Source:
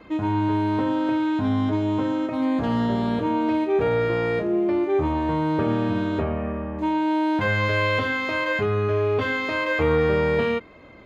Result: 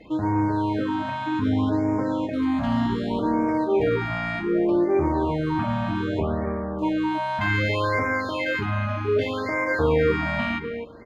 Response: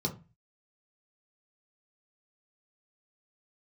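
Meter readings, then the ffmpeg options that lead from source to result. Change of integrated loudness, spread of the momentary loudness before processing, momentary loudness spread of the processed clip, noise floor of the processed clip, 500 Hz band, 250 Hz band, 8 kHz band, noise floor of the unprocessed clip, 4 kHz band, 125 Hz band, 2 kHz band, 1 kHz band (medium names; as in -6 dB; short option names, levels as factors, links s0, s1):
-1.0 dB, 4 LU, 5 LU, -30 dBFS, -1.5 dB, -1.0 dB, no reading, -37 dBFS, -1.5 dB, -0.5 dB, -1.0 dB, -0.5 dB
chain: -filter_complex "[0:a]asplit=2[s0][s1];[s1]adelay=255,lowpass=f=2400:p=1,volume=0.355,asplit=2[s2][s3];[s3]adelay=255,lowpass=f=2400:p=1,volume=0.15[s4];[s0][s2][s4]amix=inputs=3:normalize=0,tremolo=f=180:d=0.333,afftfilt=real='re*(1-between(b*sr/1024,370*pow(3500/370,0.5+0.5*sin(2*PI*0.65*pts/sr))/1.41,370*pow(3500/370,0.5+0.5*sin(2*PI*0.65*pts/sr))*1.41))':imag='im*(1-between(b*sr/1024,370*pow(3500/370,0.5+0.5*sin(2*PI*0.65*pts/sr))/1.41,370*pow(3500/370,0.5+0.5*sin(2*PI*0.65*pts/sr))*1.41))':win_size=1024:overlap=0.75,volume=1.19"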